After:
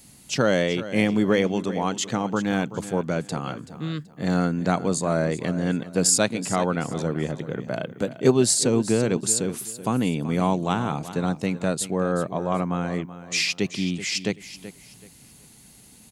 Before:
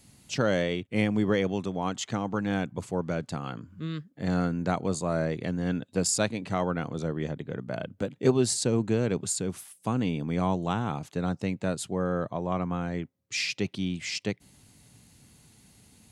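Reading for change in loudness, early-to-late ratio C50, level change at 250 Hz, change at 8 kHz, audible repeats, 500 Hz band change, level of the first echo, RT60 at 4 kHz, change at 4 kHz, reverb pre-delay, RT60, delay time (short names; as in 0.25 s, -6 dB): +5.0 dB, none, +5.0 dB, +8.5 dB, 2, +5.0 dB, -14.0 dB, none, +6.5 dB, none, none, 0.38 s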